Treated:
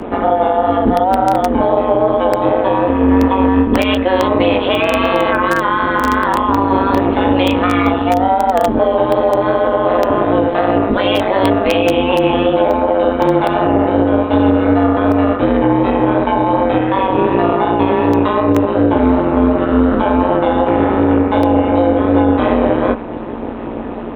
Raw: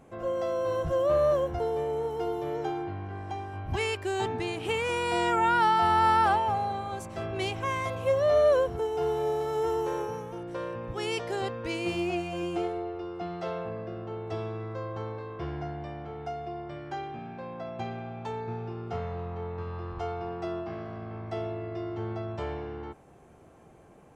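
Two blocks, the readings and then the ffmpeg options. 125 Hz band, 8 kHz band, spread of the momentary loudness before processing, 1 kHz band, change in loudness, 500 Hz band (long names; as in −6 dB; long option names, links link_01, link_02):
+15.0 dB, can't be measured, 15 LU, +15.0 dB, +16.5 dB, +16.0 dB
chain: -filter_complex "[0:a]lowshelf=frequency=230:gain=8,areverse,acompressor=threshold=-34dB:ratio=6,areverse,aresample=8000,aresample=44100,flanger=delay=16.5:depth=5.3:speed=2.7,asplit=2[link_01][link_02];[link_02]acrusher=bits=4:mix=0:aa=0.000001,volume=-8dB[link_03];[link_01][link_03]amix=inputs=2:normalize=0,aeval=exprs='val(0)+0.00141*(sin(2*PI*60*n/s)+sin(2*PI*2*60*n/s)/2+sin(2*PI*3*60*n/s)/3+sin(2*PI*4*60*n/s)/4+sin(2*PI*5*60*n/s)/5)':channel_layout=same,afreqshift=170,tremolo=f=190:d=0.857,acrossover=split=490[link_04][link_05];[link_05]acompressor=threshold=-45dB:ratio=6[link_06];[link_04][link_06]amix=inputs=2:normalize=0,alimiter=level_in=33.5dB:limit=-1dB:release=50:level=0:latency=1,volume=-1dB"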